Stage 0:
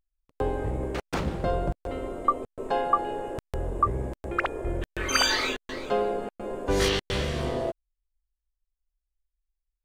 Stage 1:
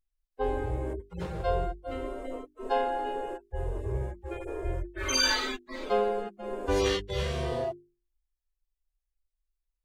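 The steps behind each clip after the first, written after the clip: harmonic-percussive separation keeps harmonic; hum notches 50/100/150/200/250/300/350/400 Hz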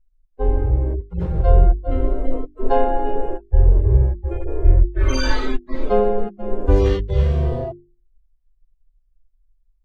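tilt EQ -4 dB/octave; gain riding 2 s; trim +2 dB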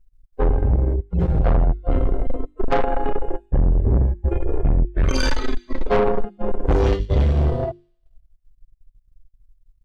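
feedback echo behind a high-pass 89 ms, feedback 50%, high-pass 3.1 kHz, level -11.5 dB; transient shaper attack +3 dB, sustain -12 dB; saturation -19.5 dBFS, distortion -5 dB; trim +6.5 dB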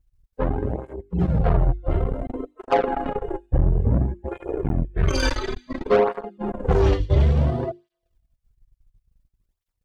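cancelling through-zero flanger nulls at 0.57 Hz, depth 5 ms; trim +2.5 dB

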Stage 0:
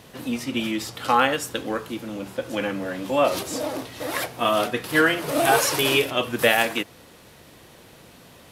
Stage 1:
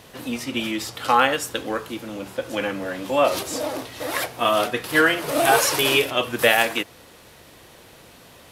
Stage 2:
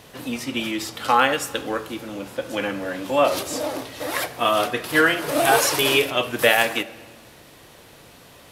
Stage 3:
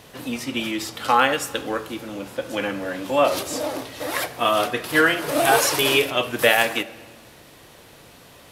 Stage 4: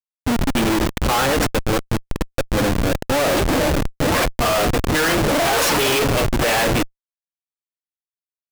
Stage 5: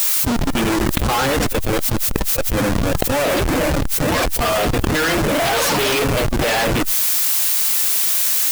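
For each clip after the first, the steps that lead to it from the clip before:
peaking EQ 180 Hz -4.5 dB 1.7 oct; trim +2 dB
simulated room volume 1800 m³, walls mixed, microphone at 0.34 m
no audible change
Schmitt trigger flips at -24.5 dBFS; trim +6 dB
coarse spectral quantiser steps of 15 dB; added noise blue -50 dBFS; level flattener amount 100%; trim -1 dB

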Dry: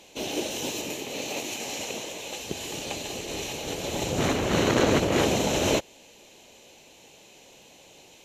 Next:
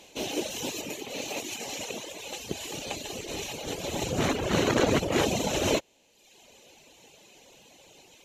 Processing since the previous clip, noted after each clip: reverb removal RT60 1 s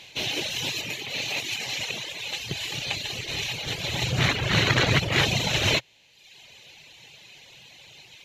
ten-band graphic EQ 125 Hz +12 dB, 250 Hz -7 dB, 500 Hz -4 dB, 2 kHz +9 dB, 4 kHz +9 dB, 8 kHz -4 dB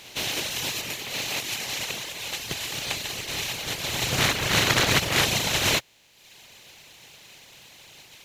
spectral contrast reduction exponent 0.53; pre-echo 115 ms -19 dB

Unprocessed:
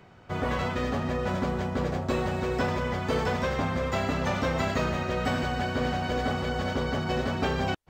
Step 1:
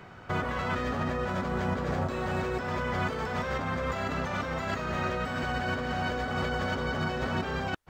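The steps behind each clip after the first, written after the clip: peaking EQ 1.4 kHz +5.5 dB 0.99 oct; compressor with a negative ratio -31 dBFS, ratio -1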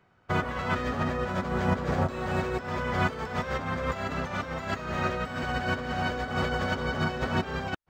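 upward expansion 2.5:1, over -42 dBFS; trim +6 dB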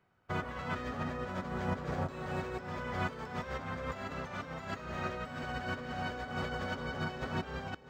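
echo whose repeats swap between lows and highs 326 ms, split 870 Hz, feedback 62%, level -13 dB; trim -8.5 dB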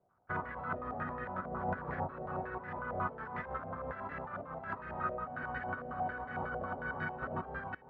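step-sequenced low-pass 11 Hz 650–1800 Hz; trim -5.5 dB

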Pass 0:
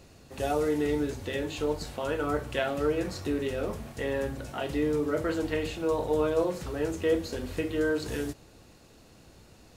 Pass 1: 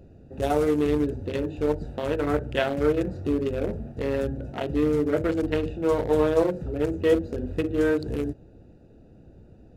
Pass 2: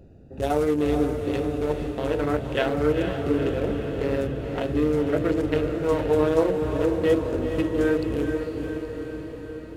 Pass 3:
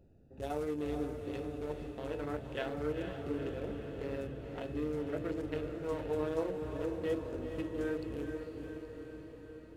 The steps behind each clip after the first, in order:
local Wiener filter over 41 samples; trim +6 dB
echo that smears into a reverb 474 ms, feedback 65%, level -6 dB
feedback comb 870 Hz, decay 0.38 s; trim -6 dB

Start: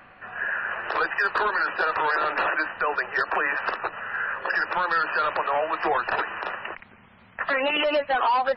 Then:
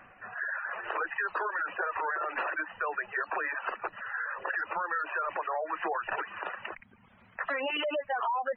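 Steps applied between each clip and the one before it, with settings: spectral gate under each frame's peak -20 dB strong; reverb removal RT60 0.66 s; compression 2:1, threshold -27 dBFS, peak gain reduction 4.5 dB; trim -4 dB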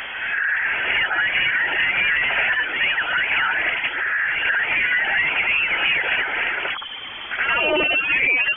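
power-law waveshaper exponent 0.5; frequency inversion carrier 3.3 kHz; reverse echo 74 ms -4.5 dB; trim +6.5 dB

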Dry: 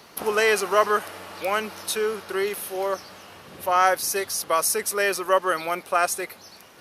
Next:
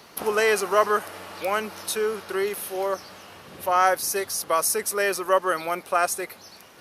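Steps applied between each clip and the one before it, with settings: dynamic bell 3.1 kHz, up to -3 dB, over -36 dBFS, Q 0.84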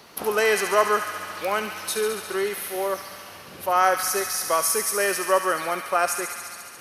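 feedback echo behind a high-pass 70 ms, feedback 82%, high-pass 1.5 kHz, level -6.5 dB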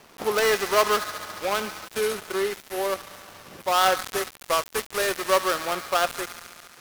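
dead-time distortion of 0.16 ms

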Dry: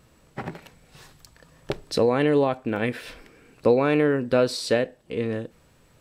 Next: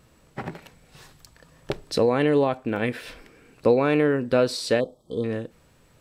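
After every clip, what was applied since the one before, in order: spectral selection erased 4.80–5.24 s, 1.3–3.1 kHz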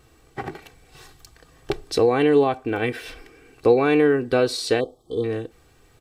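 comb 2.6 ms, depth 65%; trim +1 dB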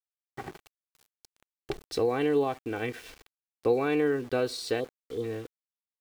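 small samples zeroed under -37 dBFS; trim -8.5 dB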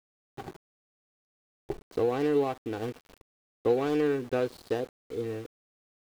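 median filter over 25 samples

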